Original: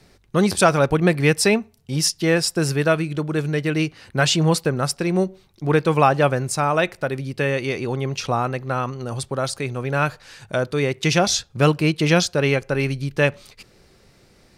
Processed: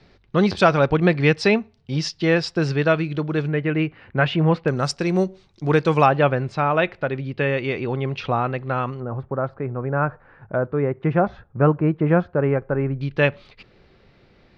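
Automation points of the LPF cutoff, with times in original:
LPF 24 dB/oct
4500 Hz
from 3.47 s 2600 Hz
from 4.68 s 6700 Hz
from 6.06 s 3500 Hz
from 9 s 1500 Hz
from 13.01 s 3800 Hz

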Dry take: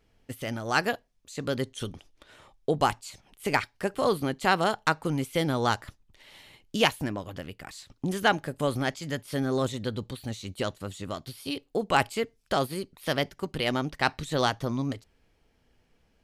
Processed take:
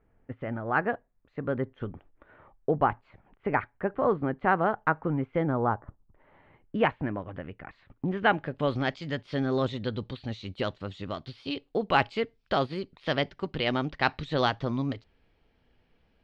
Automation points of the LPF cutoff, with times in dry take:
LPF 24 dB/oct
5.4 s 1800 Hz
5.83 s 1100 Hz
7 s 2200 Hz
8.05 s 2200 Hz
8.78 s 4200 Hz

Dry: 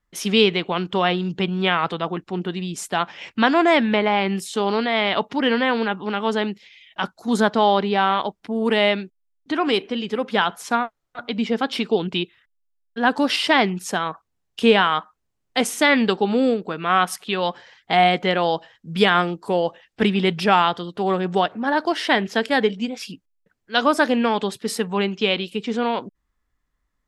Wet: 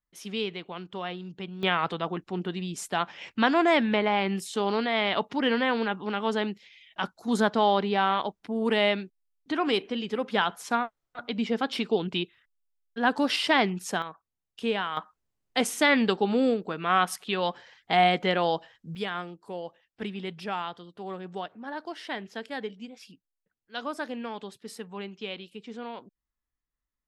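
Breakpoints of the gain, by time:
-15 dB
from 1.63 s -5.5 dB
from 14.02 s -13 dB
from 14.97 s -5 dB
from 18.95 s -16 dB

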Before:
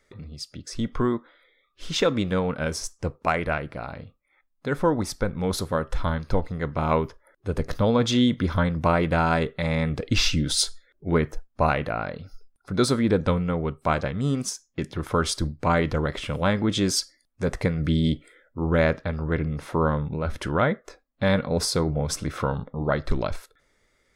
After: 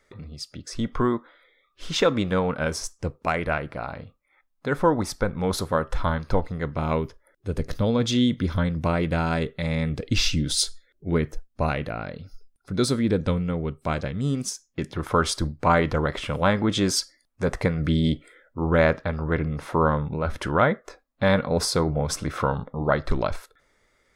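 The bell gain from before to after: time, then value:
bell 1000 Hz 1.8 oct
2.83 s +3.5 dB
3.13 s -4.5 dB
3.68 s +3.5 dB
6.35 s +3.5 dB
6.99 s -6 dB
14.4 s -6 dB
15.05 s +4 dB

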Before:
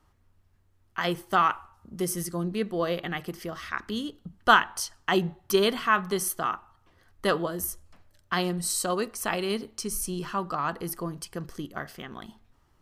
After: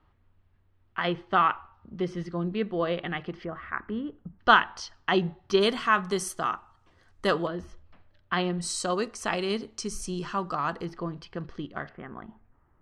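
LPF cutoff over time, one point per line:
LPF 24 dB/oct
3700 Hz
from 3.45 s 2000 Hz
from 4.39 s 4900 Hz
from 5.61 s 8800 Hz
from 7.47 s 3700 Hz
from 8.61 s 7700 Hz
from 10.85 s 4100 Hz
from 11.89 s 1900 Hz

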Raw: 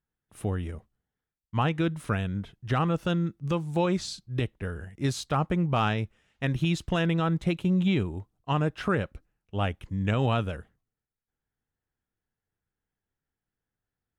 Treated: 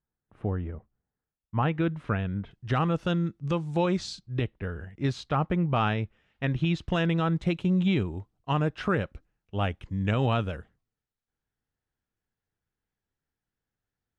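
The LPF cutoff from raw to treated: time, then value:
1500 Hz
from 1.63 s 2600 Hz
from 2.51 s 6400 Hz
from 4.34 s 3700 Hz
from 6.88 s 6400 Hz

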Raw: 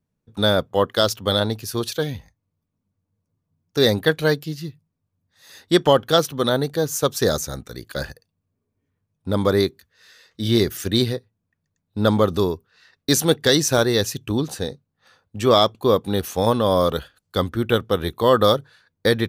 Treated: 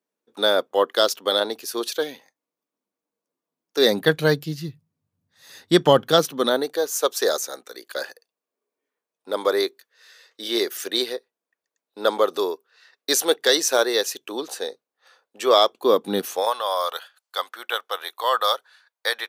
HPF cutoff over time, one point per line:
HPF 24 dB/oct
3.78 s 320 Hz
4.18 s 100 Hz
5.82 s 100 Hz
6.83 s 390 Hz
15.66 s 390 Hz
16.18 s 190 Hz
16.52 s 700 Hz

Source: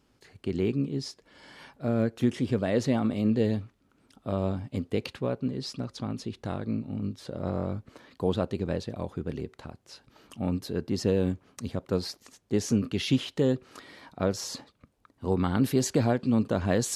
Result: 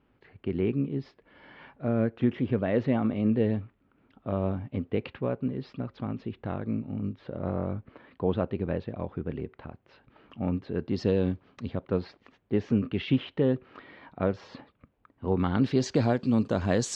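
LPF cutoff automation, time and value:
LPF 24 dB/oct
10.72 s 2800 Hz
11.07 s 4900 Hz
12.05 s 2900 Hz
15.26 s 2900 Hz
16.19 s 7400 Hz

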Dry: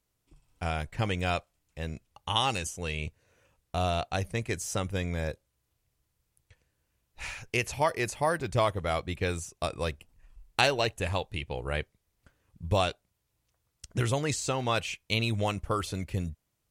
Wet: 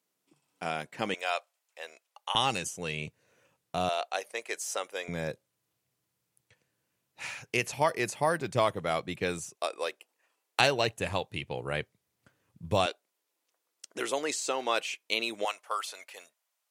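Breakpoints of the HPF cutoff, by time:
HPF 24 dB/oct
190 Hz
from 1.14 s 550 Hz
from 2.35 s 130 Hz
from 3.89 s 450 Hz
from 5.08 s 130 Hz
from 9.55 s 380 Hz
from 10.6 s 110 Hz
from 12.86 s 310 Hz
from 15.45 s 650 Hz

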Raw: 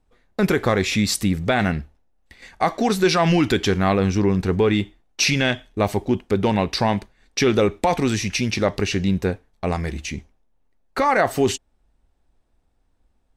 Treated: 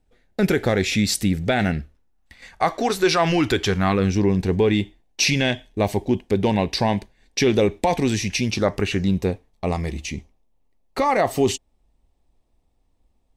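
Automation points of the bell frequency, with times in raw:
bell -12.5 dB 0.37 oct
1.73 s 1100 Hz
2.77 s 200 Hz
3.59 s 200 Hz
4.16 s 1300 Hz
8.44 s 1300 Hz
8.89 s 5900 Hz
9.17 s 1500 Hz

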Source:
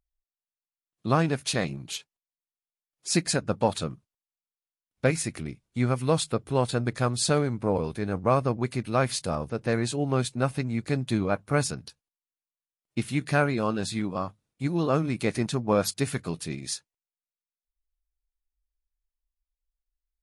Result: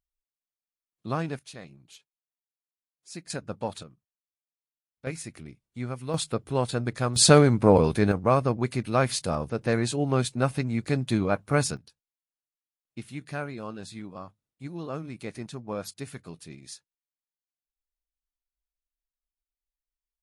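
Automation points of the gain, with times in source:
-6.5 dB
from 1.39 s -16.5 dB
from 3.3 s -8 dB
from 3.83 s -17 dB
from 5.07 s -8.5 dB
from 6.14 s -1.5 dB
from 7.16 s +8 dB
from 8.12 s +1 dB
from 11.77 s -10.5 dB

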